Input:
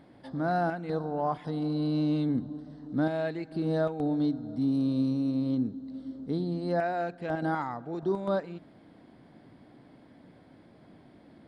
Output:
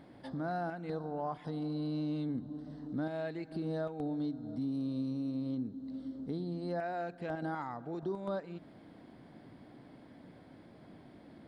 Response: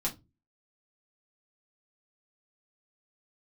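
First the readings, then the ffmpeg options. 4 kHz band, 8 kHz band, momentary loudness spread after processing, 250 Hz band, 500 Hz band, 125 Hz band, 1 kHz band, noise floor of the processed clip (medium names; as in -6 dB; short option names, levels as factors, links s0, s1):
-7.0 dB, no reading, 19 LU, -7.5 dB, -7.5 dB, -7.5 dB, -8.0 dB, -56 dBFS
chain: -af "acompressor=threshold=0.01:ratio=2"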